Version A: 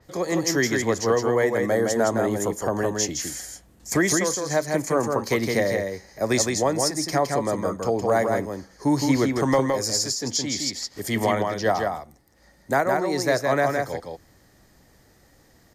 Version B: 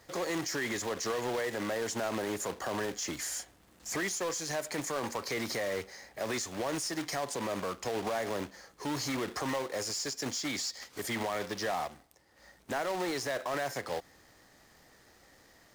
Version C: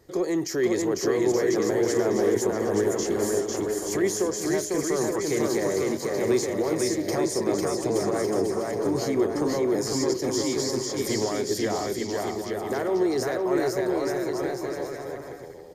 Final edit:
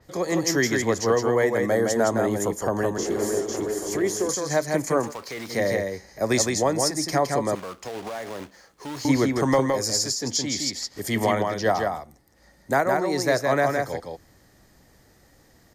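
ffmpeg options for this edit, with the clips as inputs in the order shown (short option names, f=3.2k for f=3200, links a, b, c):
-filter_complex "[1:a]asplit=2[a][b];[0:a]asplit=4[c][d][e][f];[c]atrim=end=2.982[g];[2:a]atrim=start=2.978:end=4.292[h];[d]atrim=start=4.288:end=5.14[i];[a]atrim=start=4.98:end=5.64[j];[e]atrim=start=5.48:end=7.552[k];[b]atrim=start=7.548:end=9.052[l];[f]atrim=start=9.048[m];[g][h]acrossfade=d=0.004:c1=hsin:c2=hsin[n];[n][i]acrossfade=d=0.004:c1=hsin:c2=hsin[o];[o][j]acrossfade=d=0.16:c1=tri:c2=tri[p];[p][k]acrossfade=d=0.16:c1=tri:c2=tri[q];[q][l]acrossfade=d=0.004:c1=hsin:c2=hsin[r];[r][m]acrossfade=d=0.004:c1=hsin:c2=hsin"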